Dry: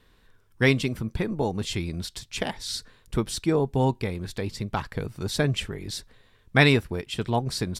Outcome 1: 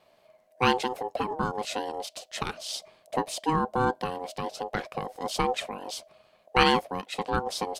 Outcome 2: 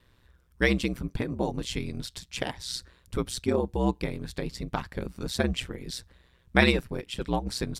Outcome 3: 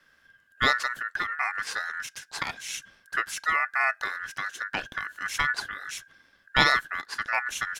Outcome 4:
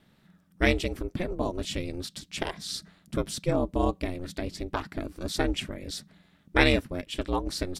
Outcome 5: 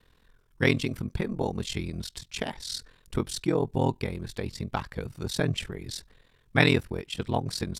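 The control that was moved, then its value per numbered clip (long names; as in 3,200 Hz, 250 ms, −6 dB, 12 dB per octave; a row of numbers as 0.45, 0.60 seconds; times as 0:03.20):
ring modulation, frequency: 630, 63, 1,600, 180, 21 Hertz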